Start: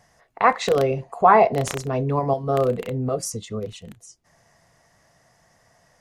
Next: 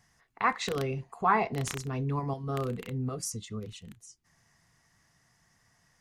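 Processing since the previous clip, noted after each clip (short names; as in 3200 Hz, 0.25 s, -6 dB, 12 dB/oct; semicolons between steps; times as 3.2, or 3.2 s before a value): bell 590 Hz -14.5 dB 0.85 oct; gain -5.5 dB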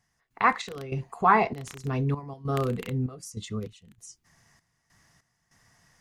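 step gate "..xx..xxxx" 98 bpm -12 dB; gain +5 dB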